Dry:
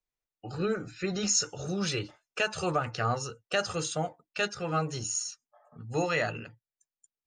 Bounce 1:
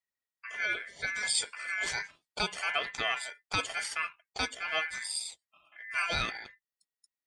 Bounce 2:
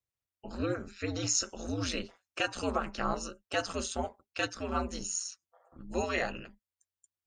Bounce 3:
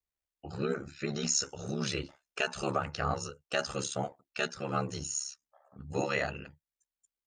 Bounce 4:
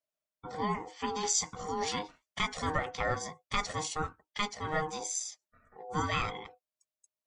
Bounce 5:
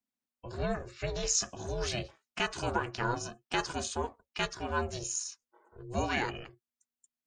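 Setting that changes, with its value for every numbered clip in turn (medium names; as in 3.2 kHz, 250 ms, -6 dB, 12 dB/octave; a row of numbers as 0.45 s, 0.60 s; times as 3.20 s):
ring modulator, frequency: 1.9 kHz, 90 Hz, 35 Hz, 620 Hz, 240 Hz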